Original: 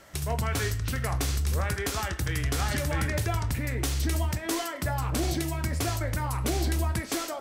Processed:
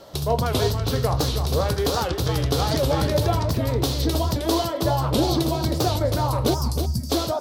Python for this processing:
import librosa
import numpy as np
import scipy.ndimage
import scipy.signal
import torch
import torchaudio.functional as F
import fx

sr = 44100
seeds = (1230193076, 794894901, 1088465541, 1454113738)

p1 = fx.graphic_eq(x, sr, hz=(125, 250, 500, 1000, 2000, 4000, 8000), db=(6, 4, 12, 7, -11, 12, -8))
p2 = fx.spec_box(p1, sr, start_s=6.54, length_s=0.56, low_hz=270.0, high_hz=4500.0, gain_db=-21)
p3 = fx.high_shelf(p2, sr, hz=4300.0, db=5.0)
p4 = p3 + fx.echo_single(p3, sr, ms=316, db=-7.5, dry=0)
y = fx.record_warp(p4, sr, rpm=78.0, depth_cents=160.0)